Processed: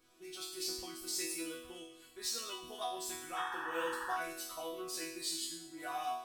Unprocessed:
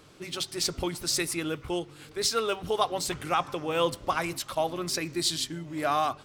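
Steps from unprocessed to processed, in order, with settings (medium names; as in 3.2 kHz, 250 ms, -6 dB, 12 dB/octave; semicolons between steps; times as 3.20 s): treble shelf 8.7 kHz +11.5 dB; chord resonator B3 sus4, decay 0.79 s; painted sound noise, 3.36–4.17 s, 820–1900 Hz -52 dBFS; trim +10.5 dB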